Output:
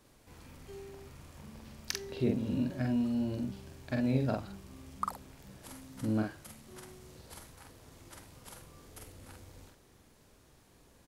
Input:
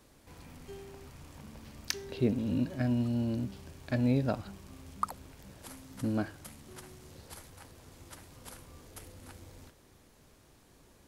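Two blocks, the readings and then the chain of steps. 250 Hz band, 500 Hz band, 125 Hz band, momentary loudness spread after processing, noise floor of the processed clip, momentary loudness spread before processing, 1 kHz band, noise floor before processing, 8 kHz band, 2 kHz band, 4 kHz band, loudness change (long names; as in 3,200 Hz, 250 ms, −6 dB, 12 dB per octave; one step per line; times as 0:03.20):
−0.5 dB, −1.0 dB, −2.5 dB, 21 LU, −63 dBFS, 21 LU, −1.0 dB, −61 dBFS, −1.0 dB, −1.0 dB, −1.0 dB, −1.5 dB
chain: double-tracking delay 46 ms −3 dB
level −3 dB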